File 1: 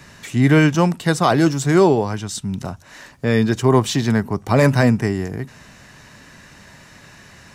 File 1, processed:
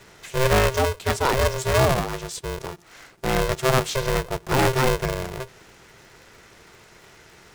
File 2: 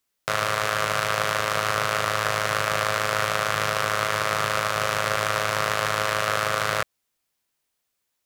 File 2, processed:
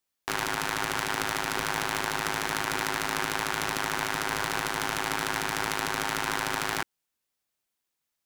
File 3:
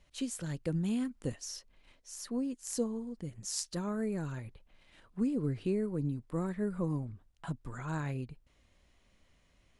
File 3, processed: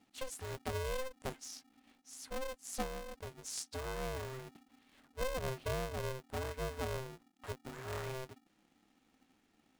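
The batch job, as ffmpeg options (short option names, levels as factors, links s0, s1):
-af "aeval=exprs='val(0)*sgn(sin(2*PI*260*n/s))':c=same,volume=0.531"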